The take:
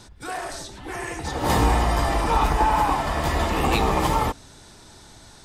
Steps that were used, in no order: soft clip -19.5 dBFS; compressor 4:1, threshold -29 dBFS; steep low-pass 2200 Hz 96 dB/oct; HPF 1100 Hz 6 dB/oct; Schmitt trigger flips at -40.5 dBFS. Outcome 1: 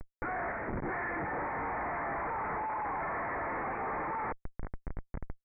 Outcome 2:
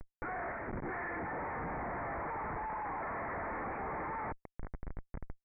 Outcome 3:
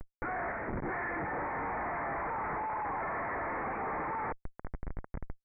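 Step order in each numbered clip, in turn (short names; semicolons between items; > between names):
HPF > soft clip > compressor > Schmitt trigger > steep low-pass; soft clip > compressor > HPF > Schmitt trigger > steep low-pass; HPF > compressor > Schmitt trigger > soft clip > steep low-pass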